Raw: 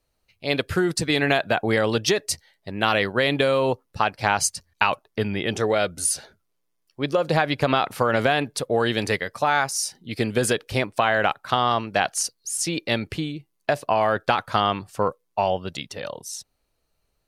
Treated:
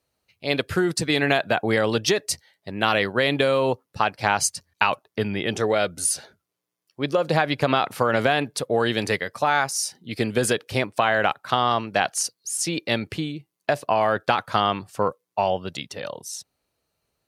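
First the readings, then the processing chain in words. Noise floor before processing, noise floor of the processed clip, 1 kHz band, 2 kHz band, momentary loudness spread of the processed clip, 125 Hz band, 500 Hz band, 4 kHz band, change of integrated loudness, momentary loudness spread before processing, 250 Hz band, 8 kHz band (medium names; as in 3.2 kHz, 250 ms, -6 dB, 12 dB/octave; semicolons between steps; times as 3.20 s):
-74 dBFS, -82 dBFS, 0.0 dB, 0.0 dB, 9 LU, -1.0 dB, 0.0 dB, 0.0 dB, 0.0 dB, 9 LU, 0.0 dB, 0.0 dB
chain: high-pass 85 Hz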